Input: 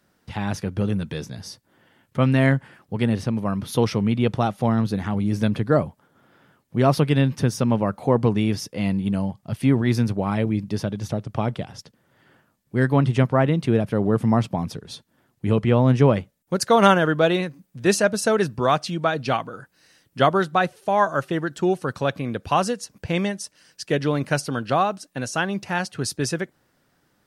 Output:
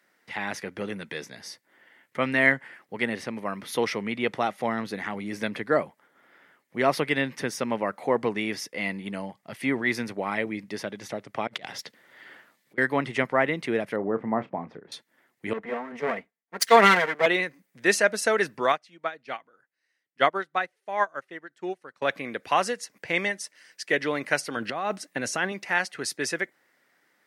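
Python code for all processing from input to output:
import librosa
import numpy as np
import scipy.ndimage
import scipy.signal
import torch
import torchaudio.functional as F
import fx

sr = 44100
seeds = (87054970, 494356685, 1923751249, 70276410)

y = fx.chain(x, sr, fx.self_delay(depth_ms=0.15),
    fx.peak_eq(hz=3800.0, db=5.5, octaves=0.76),
    fx.over_compress(threshold_db=-38.0, ratio=-1.0), at=(11.47, 12.78))
y = fx.chain(y, sr, fx.lowpass(hz=1200.0, slope=12),
    fx.doubler(ms=31.0, db=-13), at=(13.96, 14.92))
y = fx.chain(y, sr, fx.lower_of_two(delay_ms=4.4),
    fx.band_widen(depth_pct=100), at=(15.53, 17.26))
y = fx.chain(y, sr, fx.high_shelf(hz=11000.0, db=-6.0),
    fx.upward_expand(threshold_db=-28.0, expansion=2.5), at=(18.72, 22.02))
y = fx.chain(y, sr, fx.low_shelf(hz=290.0, db=10.0),
    fx.over_compress(threshold_db=-23.0, ratio=-1.0), at=(24.56, 25.52))
y = scipy.signal.sosfilt(scipy.signal.butter(2, 330.0, 'highpass', fs=sr, output='sos'), y)
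y = fx.peak_eq(y, sr, hz=2000.0, db=12.5, octaves=0.49)
y = y * librosa.db_to_amplitude(-3.0)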